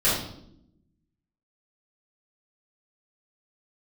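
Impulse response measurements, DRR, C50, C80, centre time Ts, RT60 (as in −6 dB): −12.0 dB, 2.0 dB, 6.5 dB, 50 ms, 0.75 s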